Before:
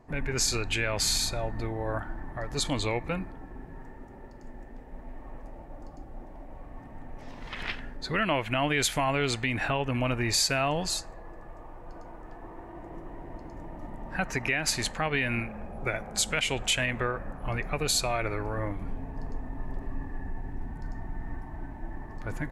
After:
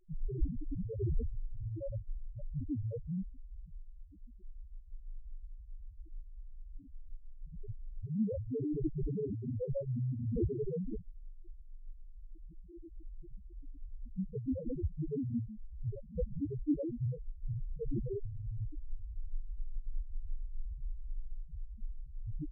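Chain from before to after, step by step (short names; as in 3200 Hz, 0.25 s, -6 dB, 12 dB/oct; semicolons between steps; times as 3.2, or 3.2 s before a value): high shelf 3100 Hz +6 dB; sample-and-hold 40×; loudest bins only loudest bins 1; gain +3 dB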